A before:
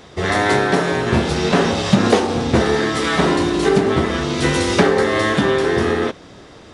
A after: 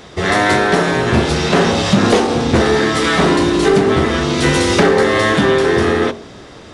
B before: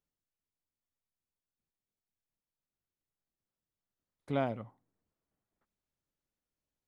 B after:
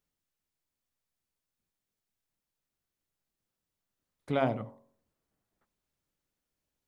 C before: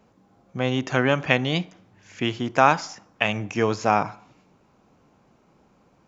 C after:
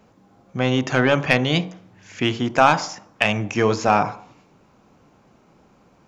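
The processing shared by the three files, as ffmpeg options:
-af "acontrast=67,bandreject=frequency=45.86:width_type=h:width=4,bandreject=frequency=91.72:width_type=h:width=4,bandreject=frequency=137.58:width_type=h:width=4,bandreject=frequency=183.44:width_type=h:width=4,bandreject=frequency=229.3:width_type=h:width=4,bandreject=frequency=275.16:width_type=h:width=4,bandreject=frequency=321.02:width_type=h:width=4,bandreject=frequency=366.88:width_type=h:width=4,bandreject=frequency=412.74:width_type=h:width=4,bandreject=frequency=458.6:width_type=h:width=4,bandreject=frequency=504.46:width_type=h:width=4,bandreject=frequency=550.32:width_type=h:width=4,bandreject=frequency=596.18:width_type=h:width=4,bandreject=frequency=642.04:width_type=h:width=4,bandreject=frequency=687.9:width_type=h:width=4,bandreject=frequency=733.76:width_type=h:width=4,bandreject=frequency=779.62:width_type=h:width=4,bandreject=frequency=825.48:width_type=h:width=4,bandreject=frequency=871.34:width_type=h:width=4,bandreject=frequency=917.2:width_type=h:width=4,bandreject=frequency=963.06:width_type=h:width=4,bandreject=frequency=1008.92:width_type=h:width=4,bandreject=frequency=1054.78:width_type=h:width=4,bandreject=frequency=1100.64:width_type=h:width=4,bandreject=frequency=1146.5:width_type=h:width=4,volume=-1.5dB"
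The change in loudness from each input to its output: +3.5, +4.0, +3.0 LU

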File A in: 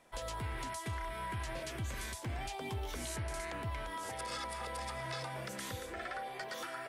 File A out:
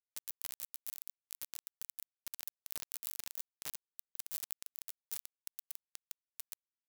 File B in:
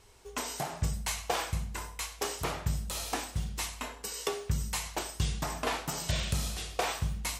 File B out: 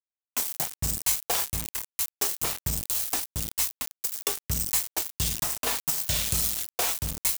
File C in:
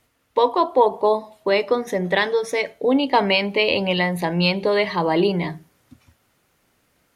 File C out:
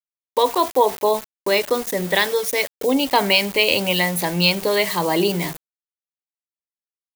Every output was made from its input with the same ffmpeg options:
-af "aeval=exprs='val(0)*gte(abs(val(0)),0.0251)':channel_layout=same,aemphasis=mode=production:type=75kf,volume=-1dB"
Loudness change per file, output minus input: −4.0, +7.5, +1.0 LU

